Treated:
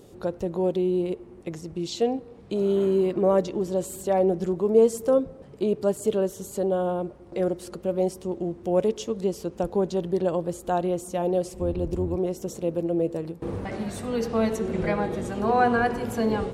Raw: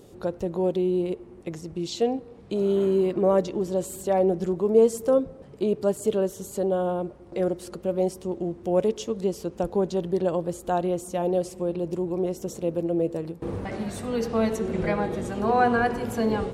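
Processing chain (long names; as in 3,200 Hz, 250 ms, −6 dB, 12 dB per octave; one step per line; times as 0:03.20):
0:11.53–0:12.16: sub-octave generator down 2 octaves, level 0 dB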